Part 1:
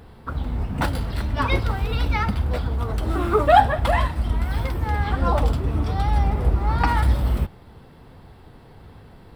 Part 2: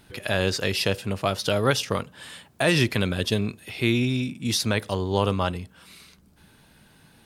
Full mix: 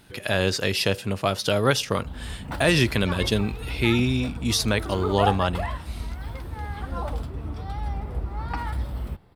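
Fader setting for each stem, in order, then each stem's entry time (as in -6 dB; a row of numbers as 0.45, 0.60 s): -10.0, +1.0 dB; 1.70, 0.00 s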